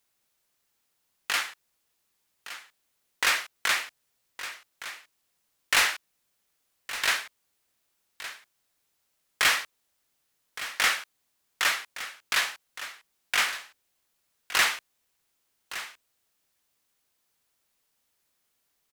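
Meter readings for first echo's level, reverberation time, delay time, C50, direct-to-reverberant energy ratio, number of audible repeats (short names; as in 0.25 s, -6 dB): -13.5 dB, none, 1.165 s, none, none, 1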